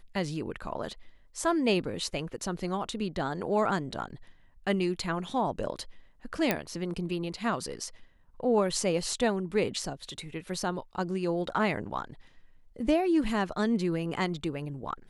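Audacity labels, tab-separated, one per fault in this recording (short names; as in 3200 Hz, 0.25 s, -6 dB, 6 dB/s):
6.510000	6.510000	pop -10 dBFS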